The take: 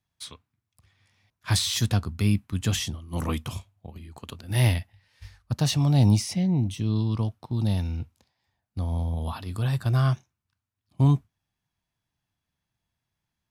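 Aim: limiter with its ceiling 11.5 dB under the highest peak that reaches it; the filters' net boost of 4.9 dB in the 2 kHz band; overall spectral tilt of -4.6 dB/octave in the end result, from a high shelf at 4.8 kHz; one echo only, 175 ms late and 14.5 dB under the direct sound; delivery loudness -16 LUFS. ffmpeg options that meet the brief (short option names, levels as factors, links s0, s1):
-af "equalizer=f=2000:t=o:g=4.5,highshelf=f=4800:g=9,alimiter=limit=0.15:level=0:latency=1,aecho=1:1:175:0.188,volume=3.76"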